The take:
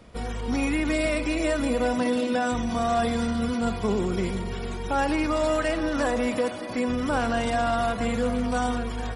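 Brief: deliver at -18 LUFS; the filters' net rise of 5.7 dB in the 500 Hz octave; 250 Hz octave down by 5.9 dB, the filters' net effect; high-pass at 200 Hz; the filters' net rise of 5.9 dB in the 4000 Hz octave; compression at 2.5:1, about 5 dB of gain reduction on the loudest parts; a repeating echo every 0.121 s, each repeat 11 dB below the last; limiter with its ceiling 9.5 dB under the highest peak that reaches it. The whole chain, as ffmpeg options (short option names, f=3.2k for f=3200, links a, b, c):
-af "highpass=200,equalizer=f=250:t=o:g=-8,equalizer=f=500:t=o:g=8.5,equalizer=f=4k:t=o:g=7.5,acompressor=threshold=-23dB:ratio=2.5,alimiter=limit=-24dB:level=0:latency=1,aecho=1:1:121|242|363:0.282|0.0789|0.0221,volume=13.5dB"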